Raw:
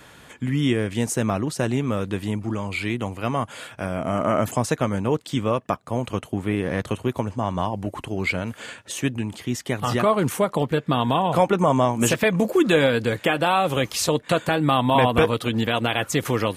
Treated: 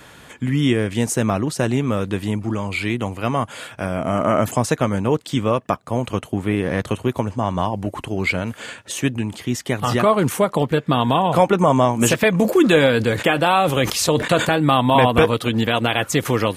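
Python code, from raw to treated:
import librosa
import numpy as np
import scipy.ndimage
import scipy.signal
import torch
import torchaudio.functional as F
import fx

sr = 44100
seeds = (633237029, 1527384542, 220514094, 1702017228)

y = fx.sustainer(x, sr, db_per_s=94.0, at=(12.33, 14.75))
y = y * 10.0 ** (3.5 / 20.0)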